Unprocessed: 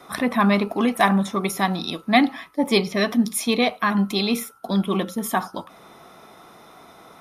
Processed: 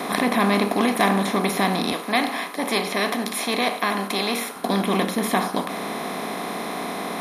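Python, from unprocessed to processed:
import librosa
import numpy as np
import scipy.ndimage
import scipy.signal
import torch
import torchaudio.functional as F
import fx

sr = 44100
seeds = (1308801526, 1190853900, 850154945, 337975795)

y = fx.bin_compress(x, sr, power=0.4)
y = fx.highpass(y, sr, hz=420.0, slope=6, at=(1.92, 4.56))
y = y * 10.0 ** (-6.0 / 20.0)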